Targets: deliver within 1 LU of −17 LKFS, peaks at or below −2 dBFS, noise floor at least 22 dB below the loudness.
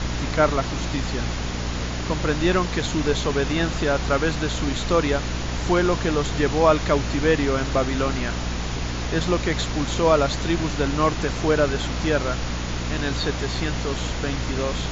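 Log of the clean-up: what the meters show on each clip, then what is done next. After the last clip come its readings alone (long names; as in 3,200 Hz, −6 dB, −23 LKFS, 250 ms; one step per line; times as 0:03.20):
mains hum 60 Hz; hum harmonics up to 300 Hz; level of the hum −26 dBFS; background noise floor −28 dBFS; target noise floor −45 dBFS; integrated loudness −23.0 LKFS; sample peak −4.0 dBFS; target loudness −17.0 LKFS
→ mains-hum notches 60/120/180/240/300 Hz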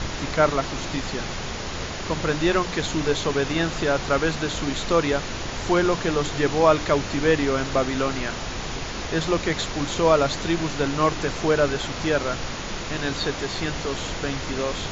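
mains hum none found; background noise floor −31 dBFS; target noise floor −46 dBFS
→ noise reduction from a noise print 15 dB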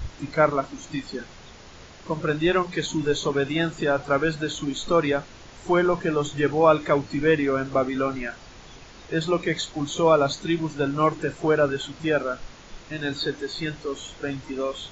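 background noise floor −46 dBFS; target noise floor −47 dBFS
→ noise reduction from a noise print 6 dB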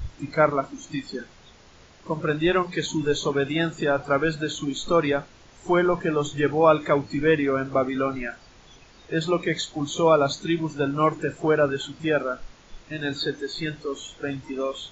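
background noise floor −52 dBFS; integrated loudness −24.5 LKFS; sample peak −5.0 dBFS; target loudness −17.0 LKFS
→ level +7.5 dB
brickwall limiter −2 dBFS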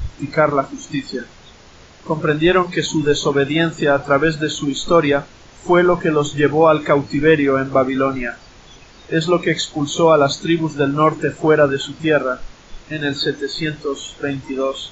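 integrated loudness −17.5 LKFS; sample peak −2.0 dBFS; background noise floor −44 dBFS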